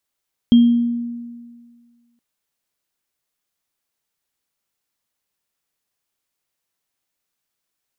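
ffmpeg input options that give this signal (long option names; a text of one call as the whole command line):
ffmpeg -f lavfi -i "aevalsrc='0.531*pow(10,-3*t/1.77)*sin(2*PI*237*t)+0.0631*pow(10,-3*t/0.51)*sin(2*PI*3220*t)':duration=1.67:sample_rate=44100" out.wav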